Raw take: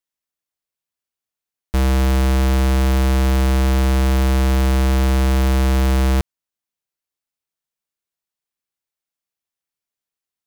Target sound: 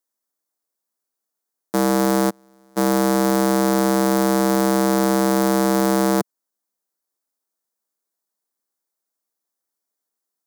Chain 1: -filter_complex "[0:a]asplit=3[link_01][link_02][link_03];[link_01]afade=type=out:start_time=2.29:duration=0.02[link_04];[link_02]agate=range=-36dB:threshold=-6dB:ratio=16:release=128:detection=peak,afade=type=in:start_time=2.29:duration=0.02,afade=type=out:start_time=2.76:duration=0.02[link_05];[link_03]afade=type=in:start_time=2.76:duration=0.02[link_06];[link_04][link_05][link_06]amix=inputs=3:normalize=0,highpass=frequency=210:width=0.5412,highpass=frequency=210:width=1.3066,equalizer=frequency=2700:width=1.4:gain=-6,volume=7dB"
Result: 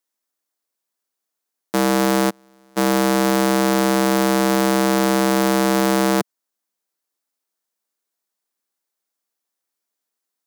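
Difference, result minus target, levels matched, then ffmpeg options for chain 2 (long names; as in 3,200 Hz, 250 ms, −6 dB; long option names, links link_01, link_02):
2,000 Hz band +4.0 dB
-filter_complex "[0:a]asplit=3[link_01][link_02][link_03];[link_01]afade=type=out:start_time=2.29:duration=0.02[link_04];[link_02]agate=range=-36dB:threshold=-6dB:ratio=16:release=128:detection=peak,afade=type=in:start_time=2.29:duration=0.02,afade=type=out:start_time=2.76:duration=0.02[link_05];[link_03]afade=type=in:start_time=2.76:duration=0.02[link_06];[link_04][link_05][link_06]amix=inputs=3:normalize=0,highpass=frequency=210:width=0.5412,highpass=frequency=210:width=1.3066,equalizer=frequency=2700:width=1.4:gain=-16.5,volume=7dB"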